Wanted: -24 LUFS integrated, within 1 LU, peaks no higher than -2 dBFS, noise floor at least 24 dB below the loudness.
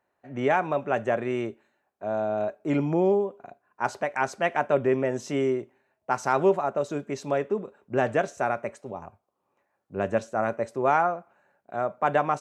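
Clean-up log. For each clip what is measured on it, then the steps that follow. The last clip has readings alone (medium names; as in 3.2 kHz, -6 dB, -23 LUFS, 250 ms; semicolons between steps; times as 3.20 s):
loudness -27.0 LUFS; peak level -10.0 dBFS; loudness target -24.0 LUFS
-> trim +3 dB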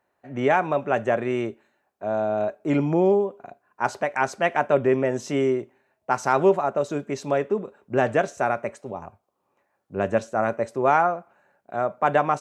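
loudness -24.0 LUFS; peak level -7.0 dBFS; noise floor -74 dBFS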